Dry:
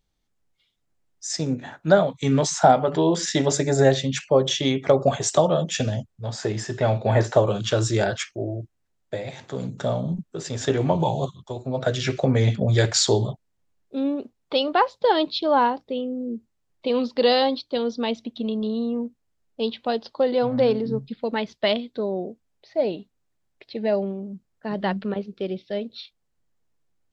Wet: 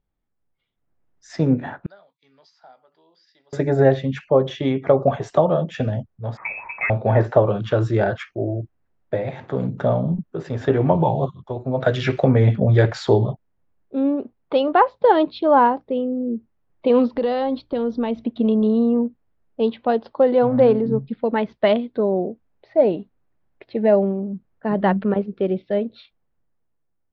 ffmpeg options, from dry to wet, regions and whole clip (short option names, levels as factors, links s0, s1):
-filter_complex "[0:a]asettb=1/sr,asplit=3[s0][s1][s2];[s0]atrim=end=1.864[s3];[s1]atrim=start=1.86:end=3.53,asetpts=PTS-STARTPTS,afade=t=in:d=0.004:c=qsin,afade=t=out:st=1.666:d=0.004:c=qsin,bandpass=f=4800:t=q:w=14,aemphasis=mode=reproduction:type=75fm[s4];[s2]atrim=start=3.526[s5];[s3][s4]acrossfade=d=0.004:c1=hsin:c2=qsin[s6];[s6][s5]acrossfade=d=0.004:c1=qsin:c2=hsin,asettb=1/sr,asplit=3[s7][s8][s9];[s7]atrim=end=6.374[s10];[s8]atrim=start=6.37:end=6.9,asetpts=PTS-STARTPTS,afade=t=in:d=0.004:c=qsin,afade=t=out:st=0.526:d=0.004:c=qsin,aeval=exprs='val(0)*gte(abs(val(0)),0.00631)':c=same,lowpass=f=2300:t=q:w=0.5098,lowpass=f=2300:t=q:w=0.6013,lowpass=f=2300:t=q:w=0.9,lowpass=f=2300:t=q:w=2.563,afreqshift=-2700[s11];[s9]atrim=start=6.896[s12];[s10][s11]acrossfade=d=0.004:c1=hsin:c2=qsin[s13];[s13][s12]acrossfade=d=0.004:c1=qsin:c2=hsin,asettb=1/sr,asplit=3[s14][s15][s16];[s14]atrim=end=11.804[s17];[s15]atrim=start=11.8:end=12.32,asetpts=PTS-STARTPTS,afade=t=in:d=0.004:c=qsin,afade=t=out:st=0.516:d=0.004:c=qsin,highshelf=f=2100:g=10.5,aeval=exprs='sgn(val(0))*max(abs(val(0))-0.00355,0)':c=same[s18];[s16]atrim=start=12.316[s19];[s17][s18]acrossfade=d=0.004:c1=hsin:c2=qsin[s20];[s20][s19]acrossfade=d=0.004:c1=qsin:c2=hsin,asettb=1/sr,asplit=3[s21][s22][s23];[s21]atrim=end=17.134[s24];[s22]atrim=start=17.13:end=18.24,asetpts=PTS-STARTPTS,afade=t=in:d=0.004:c=qsin,afade=t=out:st=1.106:d=0.004:c=qsin,acompressor=threshold=0.0282:ratio=2.5:attack=3.2:release=140:knee=1:detection=peak,lowshelf=f=130:g=11.5[s25];[s23]atrim=start=18.236[s26];[s24][s25]acrossfade=d=0.004:c1=hsin:c2=qsin[s27];[s27][s26]acrossfade=d=0.004:c1=qsin:c2=hsin,lowpass=1700,dynaudnorm=f=100:g=21:m=3.76,volume=0.75"